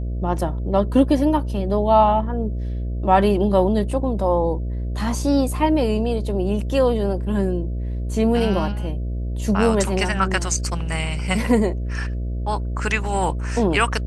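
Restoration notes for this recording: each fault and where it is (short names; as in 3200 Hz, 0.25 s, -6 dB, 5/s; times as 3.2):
buzz 60 Hz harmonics 11 -25 dBFS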